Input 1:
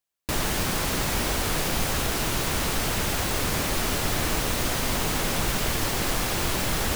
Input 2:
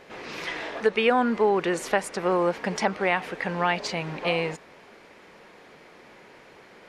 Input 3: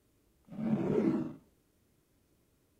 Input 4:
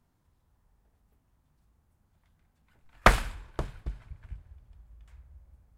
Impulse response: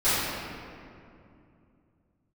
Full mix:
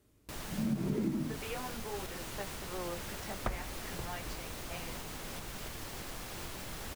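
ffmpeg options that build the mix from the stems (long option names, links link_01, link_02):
-filter_complex "[0:a]alimiter=limit=-15.5dB:level=0:latency=1:release=230,volume=-16dB[link_01];[1:a]flanger=delay=15:depth=4.5:speed=0.51,adelay=450,volume=-17dB[link_02];[2:a]asubboost=boost=9.5:cutoff=230,volume=2dB[link_03];[3:a]tiltshelf=frequency=970:gain=6,adelay=400,volume=-15.5dB[link_04];[link_01][link_02][link_03][link_04]amix=inputs=4:normalize=0,acompressor=threshold=-30dB:ratio=6"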